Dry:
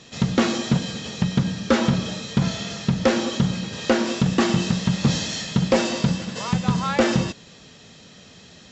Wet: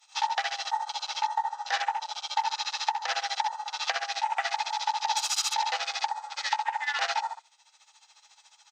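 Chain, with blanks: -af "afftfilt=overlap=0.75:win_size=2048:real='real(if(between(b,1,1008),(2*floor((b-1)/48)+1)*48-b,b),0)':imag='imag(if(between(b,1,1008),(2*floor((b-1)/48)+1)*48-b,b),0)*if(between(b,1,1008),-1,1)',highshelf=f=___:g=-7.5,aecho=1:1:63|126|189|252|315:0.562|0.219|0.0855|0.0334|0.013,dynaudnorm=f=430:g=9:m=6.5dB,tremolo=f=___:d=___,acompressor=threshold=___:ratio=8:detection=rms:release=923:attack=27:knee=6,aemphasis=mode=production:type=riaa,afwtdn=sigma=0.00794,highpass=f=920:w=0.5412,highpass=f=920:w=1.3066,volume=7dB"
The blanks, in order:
2.5k, 14, 0.77, -26dB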